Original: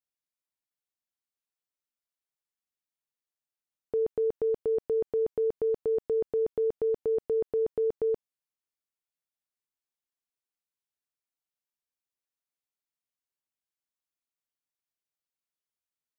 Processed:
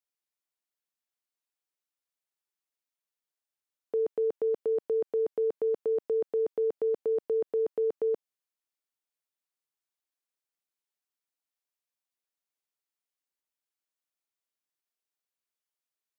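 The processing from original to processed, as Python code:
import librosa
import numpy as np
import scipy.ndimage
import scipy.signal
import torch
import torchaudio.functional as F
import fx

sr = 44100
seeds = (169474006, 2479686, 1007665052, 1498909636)

y = scipy.signal.sosfilt(scipy.signal.butter(2, 270.0, 'highpass', fs=sr, output='sos'), x)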